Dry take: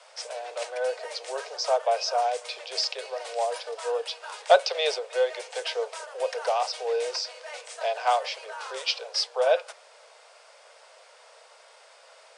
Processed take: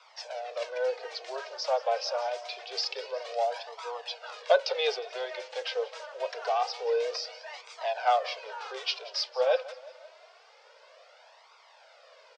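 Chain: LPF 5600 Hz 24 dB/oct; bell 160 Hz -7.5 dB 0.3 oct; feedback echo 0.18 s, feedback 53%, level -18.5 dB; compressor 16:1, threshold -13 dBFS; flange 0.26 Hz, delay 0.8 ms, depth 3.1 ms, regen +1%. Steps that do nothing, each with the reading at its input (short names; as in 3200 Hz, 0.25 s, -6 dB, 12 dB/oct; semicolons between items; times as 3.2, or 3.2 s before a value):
bell 160 Hz: input band starts at 360 Hz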